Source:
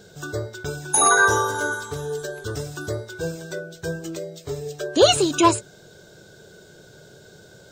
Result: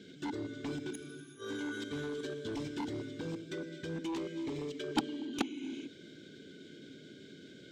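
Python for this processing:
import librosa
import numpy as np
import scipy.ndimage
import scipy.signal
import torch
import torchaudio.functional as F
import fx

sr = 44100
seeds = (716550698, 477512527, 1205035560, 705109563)

y = fx.level_steps(x, sr, step_db=17)
y = fx.gate_flip(y, sr, shuts_db=-15.0, range_db=-38)
y = fx.vowel_filter(y, sr, vowel='i')
y = fx.rev_gated(y, sr, seeds[0], gate_ms=470, shape='flat', drr_db=6.5)
y = fx.cheby_harmonics(y, sr, harmonics=(7,), levels_db=(-8,), full_scale_db=-29.0)
y = F.gain(torch.from_numpy(y), 9.5).numpy()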